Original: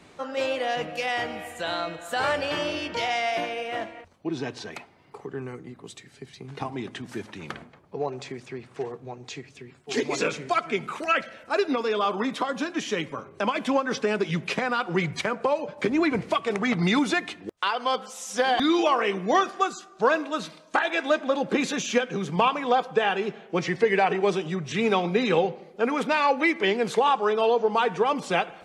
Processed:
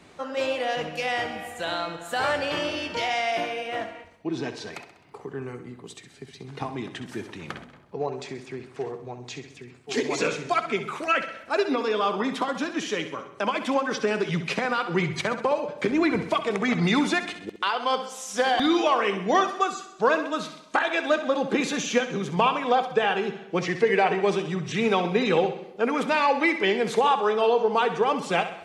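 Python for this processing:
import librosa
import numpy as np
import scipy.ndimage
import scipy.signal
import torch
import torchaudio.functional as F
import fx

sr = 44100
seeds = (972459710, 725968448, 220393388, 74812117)

y = fx.highpass(x, sr, hz=200.0, slope=6, at=(12.84, 14.0))
y = fx.echo_feedback(y, sr, ms=65, feedback_pct=54, wet_db=-11.0)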